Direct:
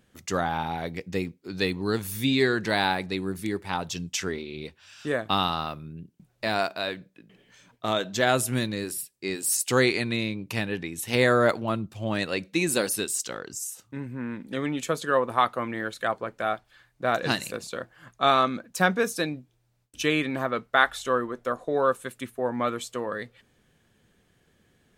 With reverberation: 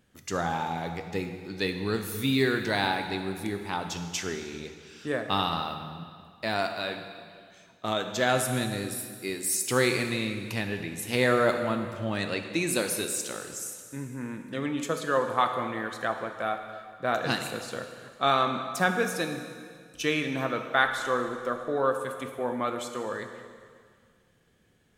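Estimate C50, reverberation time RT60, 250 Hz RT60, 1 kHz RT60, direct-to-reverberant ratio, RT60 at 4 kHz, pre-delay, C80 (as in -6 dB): 7.0 dB, 2.0 s, 2.0 s, 2.0 s, 5.5 dB, 1.9 s, 6 ms, 8.0 dB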